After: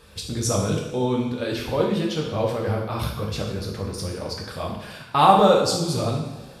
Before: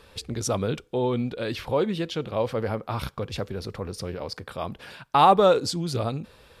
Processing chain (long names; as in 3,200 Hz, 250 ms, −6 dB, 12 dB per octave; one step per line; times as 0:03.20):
bass and treble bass +4 dB, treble +5 dB
coupled-rooms reverb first 0.8 s, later 2.5 s, from −18 dB, DRR −2.5 dB
level −2.5 dB